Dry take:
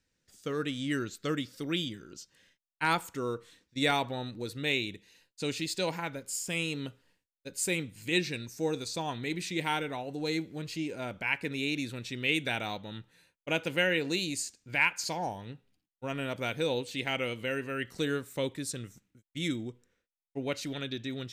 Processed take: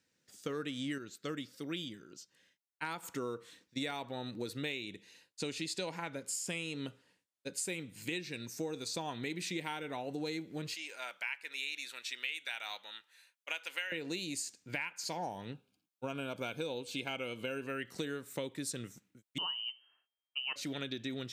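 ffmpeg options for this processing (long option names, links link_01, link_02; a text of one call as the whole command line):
ffmpeg -i in.wav -filter_complex "[0:a]asettb=1/sr,asplit=3[link_01][link_02][link_03];[link_01]atrim=end=4.834[link_04];[link_02]atrim=start=4.83:end=7.67,asetpts=PTS-STARTPTS,afade=type=in:duration=0.004:curve=qsin,afade=type=out:start_time=2.836:duration=0.004:curve=qsin,lowpass=frequency=12000:width=0.5412,lowpass=frequency=12000:width=1.3066[link_05];[link_03]atrim=start=7.666[link_06];[link_04][link_05]acrossfade=duration=0.004:curve1=hsin:curve2=qsin[link_07];[link_07][link_06]acrossfade=duration=0.004:curve1=qsin:curve2=hsin,asettb=1/sr,asplit=3[link_08][link_09][link_10];[link_08]atrim=end=10.744[link_11];[link_09]atrim=start=10.74:end=13.92,asetpts=PTS-STARTPTS,afade=type=in:duration=0.004:curve=qsin,afade=type=out:start_time=3.176:duration=0.004:curve=qsin,highpass=1200[link_12];[link_10]atrim=start=13.916[link_13];[link_11][link_12]acrossfade=duration=0.004:curve1=hsin:curve2=qsin[link_14];[link_14][link_13]acrossfade=duration=0.004:curve1=qsin:curve2=hsin,asettb=1/sr,asplit=3[link_15][link_16][link_17];[link_15]atrim=end=15.534[link_18];[link_16]atrim=start=15.53:end=17.67,asetpts=PTS-STARTPTS,afade=type=in:duration=0.004:curve=qsin,afade=type=out:start_time=2.136:duration=0.004:curve=qsin,asuperstop=centerf=1900:order=8:qfactor=5.1[link_19];[link_17]atrim=start=17.666[link_20];[link_18][link_19]acrossfade=duration=0.004:curve1=hsin:curve2=qsin[link_21];[link_21][link_20]acrossfade=duration=0.004:curve1=qsin:curve2=hsin,asettb=1/sr,asplit=3[link_22][link_23][link_24];[link_22]atrim=end=19.384[link_25];[link_23]atrim=start=19.38:end=20.56,asetpts=PTS-STARTPTS,afade=type=in:duration=0.004:curve=qsin,afade=type=out:start_time=1.176:duration=0.004:curve=qsin,lowpass=frequency=2700:width_type=q:width=0.5098,lowpass=frequency=2700:width_type=q:width=0.6013,lowpass=frequency=2700:width_type=q:width=0.9,lowpass=frequency=2700:width_type=q:width=2.563,afreqshift=-3200[link_26];[link_24]atrim=start=20.556[link_27];[link_25][link_26]acrossfade=duration=0.004:curve1=hsin:curve2=qsin[link_28];[link_28][link_27]acrossfade=duration=0.004:curve1=qsin:curve2=hsin,asplit=3[link_29][link_30][link_31];[link_29]atrim=end=0.982[link_32];[link_30]atrim=start=0.978:end=3.032,asetpts=PTS-STARTPTS,volume=-6.5dB[link_33];[link_31]atrim=start=3.028[link_34];[link_32][link_33]acrossfade=duration=0.004:curve1=hsin:curve2=hsin[link_35];[link_35][link_34]acrossfade=duration=0.004:curve1=hsin:curve2=hsin,highpass=140,acompressor=threshold=-36dB:ratio=12,volume=1.5dB" out.wav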